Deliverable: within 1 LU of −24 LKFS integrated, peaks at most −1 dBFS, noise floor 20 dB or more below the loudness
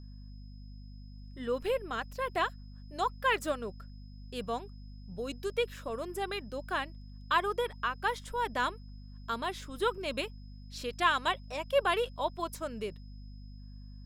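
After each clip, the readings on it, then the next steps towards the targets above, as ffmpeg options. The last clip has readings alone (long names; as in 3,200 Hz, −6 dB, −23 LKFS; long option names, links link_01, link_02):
mains hum 50 Hz; hum harmonics up to 250 Hz; level of the hum −45 dBFS; interfering tone 5,100 Hz; level of the tone −64 dBFS; integrated loudness −33.5 LKFS; sample peak −13.5 dBFS; target loudness −24.0 LKFS
→ -af "bandreject=frequency=50:width_type=h:width=4,bandreject=frequency=100:width_type=h:width=4,bandreject=frequency=150:width_type=h:width=4,bandreject=frequency=200:width_type=h:width=4,bandreject=frequency=250:width_type=h:width=4"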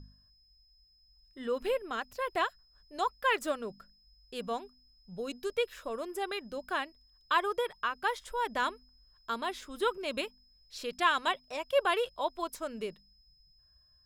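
mains hum none found; interfering tone 5,100 Hz; level of the tone −64 dBFS
→ -af "bandreject=frequency=5100:width=30"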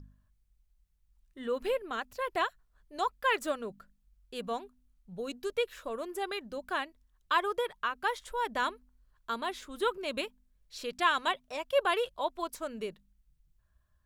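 interfering tone none found; integrated loudness −33.5 LKFS; sample peak −13.5 dBFS; target loudness −24.0 LKFS
→ -af "volume=9.5dB"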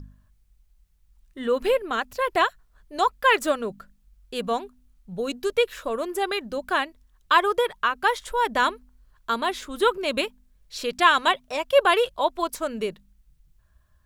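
integrated loudness −24.5 LKFS; sample peak −4.0 dBFS; background noise floor −62 dBFS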